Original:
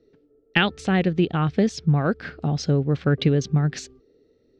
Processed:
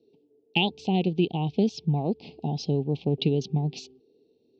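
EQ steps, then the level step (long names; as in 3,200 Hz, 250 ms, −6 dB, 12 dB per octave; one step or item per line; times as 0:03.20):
Chebyshev band-stop filter 870–2,600 Hz, order 3
loudspeaker in its box 190–5,000 Hz, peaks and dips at 290 Hz −3 dB, 560 Hz −9 dB, 1,600 Hz −10 dB
0.0 dB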